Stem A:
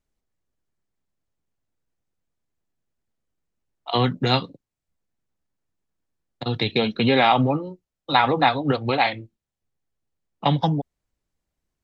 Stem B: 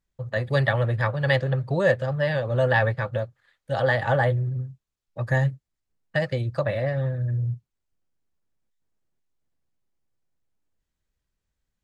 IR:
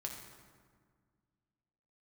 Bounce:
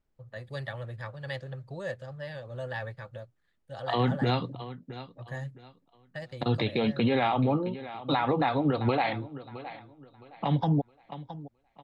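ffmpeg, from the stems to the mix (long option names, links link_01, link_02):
-filter_complex "[0:a]lowpass=frequency=2000:poles=1,acompressor=threshold=-20dB:ratio=6,volume=2dB,asplit=2[link_01][link_02];[link_02]volume=-18.5dB[link_03];[1:a]adynamicequalizer=threshold=0.00891:dfrequency=3300:dqfactor=0.7:tfrequency=3300:tqfactor=0.7:attack=5:release=100:ratio=0.375:range=3.5:mode=boostabove:tftype=highshelf,volume=-15.5dB[link_04];[link_03]aecho=0:1:665|1330|1995|2660:1|0.29|0.0841|0.0244[link_05];[link_01][link_04][link_05]amix=inputs=3:normalize=0,alimiter=limit=-17dB:level=0:latency=1:release=76"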